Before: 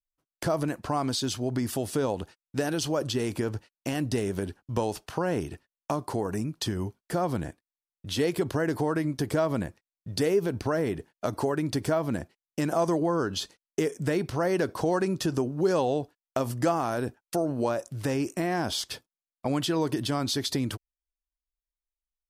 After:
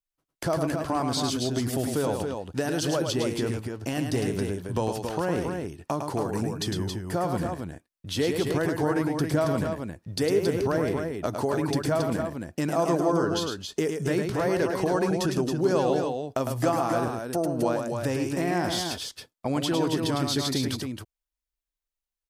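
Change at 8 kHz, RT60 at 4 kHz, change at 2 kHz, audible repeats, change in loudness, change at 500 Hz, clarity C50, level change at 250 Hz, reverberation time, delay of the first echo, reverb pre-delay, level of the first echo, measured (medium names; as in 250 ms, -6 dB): +2.0 dB, no reverb, +2.0 dB, 2, +2.0 dB, +2.0 dB, no reverb, +2.0 dB, no reverb, 106 ms, no reverb, -5.5 dB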